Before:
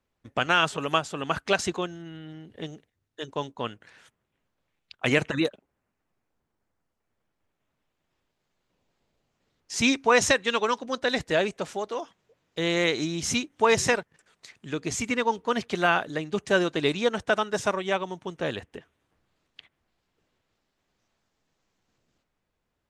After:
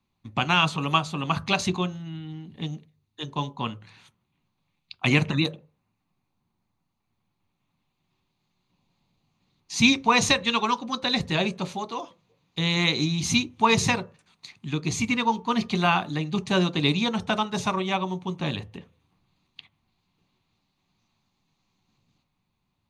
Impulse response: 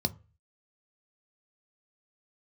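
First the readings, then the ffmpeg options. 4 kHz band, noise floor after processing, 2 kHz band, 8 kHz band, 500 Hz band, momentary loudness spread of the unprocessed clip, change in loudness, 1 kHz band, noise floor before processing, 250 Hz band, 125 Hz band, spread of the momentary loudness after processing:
+4.5 dB, -77 dBFS, 0.0 dB, 0.0 dB, -5.0 dB, 13 LU, +1.5 dB, +2.0 dB, -80 dBFS, +4.0 dB, +8.5 dB, 15 LU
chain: -filter_complex "[0:a]asplit=2[s0][s1];[1:a]atrim=start_sample=2205,lowshelf=f=180:g=-9.5[s2];[s1][s2]afir=irnorm=-1:irlink=0,volume=0.562[s3];[s0][s3]amix=inputs=2:normalize=0"

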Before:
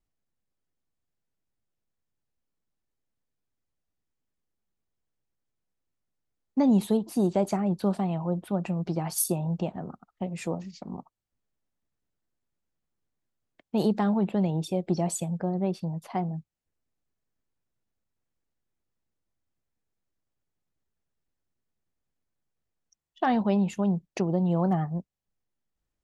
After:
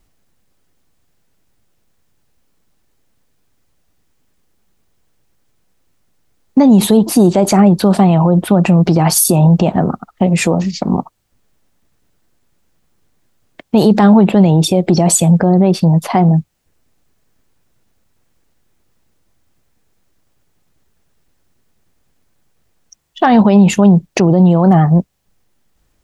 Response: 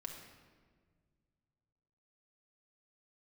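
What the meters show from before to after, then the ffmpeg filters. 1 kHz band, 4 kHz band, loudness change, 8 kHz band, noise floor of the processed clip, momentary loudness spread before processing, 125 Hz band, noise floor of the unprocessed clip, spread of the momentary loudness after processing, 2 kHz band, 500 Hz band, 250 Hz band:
+16.0 dB, +20.5 dB, +16.5 dB, +18.0 dB, -61 dBFS, 12 LU, +18.5 dB, -84 dBFS, 8 LU, +18.0 dB, +15.5 dB, +17.0 dB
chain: -af "alimiter=level_in=15.8:limit=0.891:release=50:level=0:latency=1,volume=0.891"

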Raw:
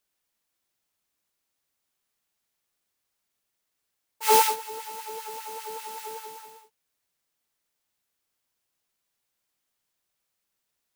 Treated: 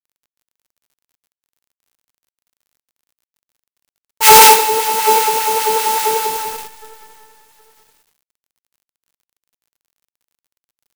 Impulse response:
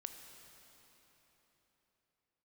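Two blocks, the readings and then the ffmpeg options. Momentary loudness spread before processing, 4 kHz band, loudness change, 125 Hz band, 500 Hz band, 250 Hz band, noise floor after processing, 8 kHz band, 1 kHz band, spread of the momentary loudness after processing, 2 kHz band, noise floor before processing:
19 LU, +18.0 dB, +16.0 dB, no reading, +14.5 dB, +16.0 dB, under -85 dBFS, +18.0 dB, +16.0 dB, 17 LU, +19.0 dB, -81 dBFS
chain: -filter_complex "[0:a]aecho=1:1:766|1532:0.112|0.0269[s0];[1:a]atrim=start_sample=2205,atrim=end_sample=6615[s1];[s0][s1]afir=irnorm=-1:irlink=0,apsyclip=22.4,acrusher=bits=5:dc=4:mix=0:aa=0.000001,volume=0.841"

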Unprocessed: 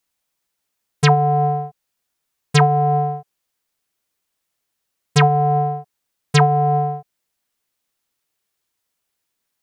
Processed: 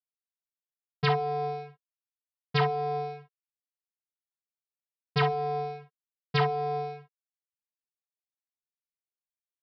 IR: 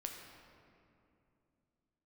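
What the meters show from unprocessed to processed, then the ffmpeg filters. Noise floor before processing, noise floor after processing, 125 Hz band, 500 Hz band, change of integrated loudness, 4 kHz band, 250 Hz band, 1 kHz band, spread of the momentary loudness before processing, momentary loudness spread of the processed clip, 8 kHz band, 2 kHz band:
-77 dBFS, under -85 dBFS, -15.0 dB, -8.5 dB, -12.5 dB, -9.0 dB, -16.0 dB, -12.5 dB, 12 LU, 13 LU, under -30 dB, -9.0 dB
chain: -filter_complex "[0:a]bandreject=f=50:t=h:w=6,bandreject=f=100:t=h:w=6,bandreject=f=150:t=h:w=6,aresample=11025,aeval=exprs='sgn(val(0))*max(abs(val(0))-0.0178,0)':c=same,aresample=44100[s0];[1:a]atrim=start_sample=2205,afade=t=out:st=0.15:d=0.01,atrim=end_sample=7056,asetrate=66150,aresample=44100[s1];[s0][s1]afir=irnorm=-1:irlink=0,volume=0.75"

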